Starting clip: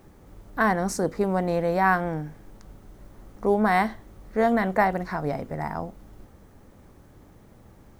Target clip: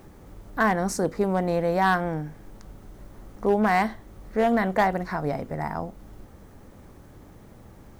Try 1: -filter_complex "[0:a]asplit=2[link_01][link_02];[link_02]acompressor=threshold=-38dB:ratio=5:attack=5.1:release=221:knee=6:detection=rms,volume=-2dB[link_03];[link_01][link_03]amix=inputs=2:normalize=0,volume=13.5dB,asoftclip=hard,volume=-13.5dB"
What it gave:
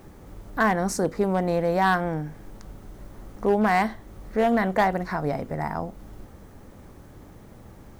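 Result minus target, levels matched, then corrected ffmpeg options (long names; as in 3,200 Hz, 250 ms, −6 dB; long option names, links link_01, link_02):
downward compressor: peak gain reduction −9.5 dB
-filter_complex "[0:a]asplit=2[link_01][link_02];[link_02]acompressor=threshold=-50dB:ratio=5:attack=5.1:release=221:knee=6:detection=rms,volume=-2dB[link_03];[link_01][link_03]amix=inputs=2:normalize=0,volume=13.5dB,asoftclip=hard,volume=-13.5dB"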